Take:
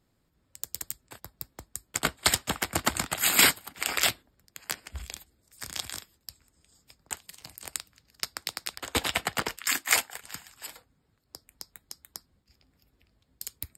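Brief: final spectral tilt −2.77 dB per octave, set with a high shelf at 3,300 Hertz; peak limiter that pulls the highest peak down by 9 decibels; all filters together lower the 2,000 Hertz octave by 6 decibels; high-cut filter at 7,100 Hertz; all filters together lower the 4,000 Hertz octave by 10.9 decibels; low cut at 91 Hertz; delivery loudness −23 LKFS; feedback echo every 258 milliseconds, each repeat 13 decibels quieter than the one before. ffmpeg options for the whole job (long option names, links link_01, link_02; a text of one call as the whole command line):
ffmpeg -i in.wav -af "highpass=91,lowpass=7100,equalizer=frequency=2000:width_type=o:gain=-3,highshelf=frequency=3300:gain=-7.5,equalizer=frequency=4000:width_type=o:gain=-7.5,alimiter=limit=-20dB:level=0:latency=1,aecho=1:1:258|516|774:0.224|0.0493|0.0108,volume=15.5dB" out.wav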